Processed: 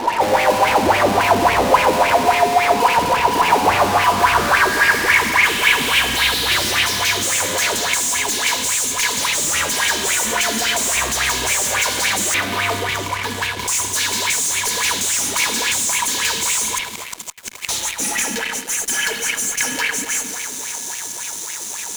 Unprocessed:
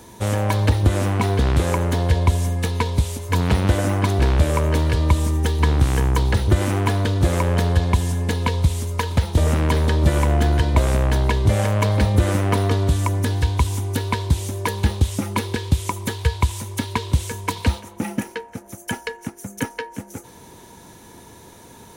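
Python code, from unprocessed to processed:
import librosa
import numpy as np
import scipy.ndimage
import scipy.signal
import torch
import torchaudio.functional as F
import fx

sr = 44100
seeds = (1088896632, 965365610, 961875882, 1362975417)

p1 = fx.air_absorb(x, sr, metres=350.0, at=(12.34, 13.68))
p2 = fx.gate_flip(p1, sr, shuts_db=-19.0, range_db=-32, at=(16.69, 17.69))
p3 = fx.filter_sweep_bandpass(p2, sr, from_hz=840.0, to_hz=6900.0, start_s=3.48, end_s=7.31, q=3.2)
p4 = p3 + fx.echo_single(p3, sr, ms=1128, db=-24.0, dry=0)
p5 = fx.rev_spring(p4, sr, rt60_s=2.3, pass_ms=(31, 50), chirp_ms=55, drr_db=-2.0)
p6 = fx.fuzz(p5, sr, gain_db=54.0, gate_db=-59.0)
p7 = p5 + (p6 * librosa.db_to_amplitude(-4.0))
p8 = fx.high_shelf(p7, sr, hz=5900.0, db=4.0)
p9 = fx.bell_lfo(p8, sr, hz=3.6, low_hz=210.0, high_hz=2500.0, db=14)
y = p9 * librosa.db_to_amplitude(-4.0)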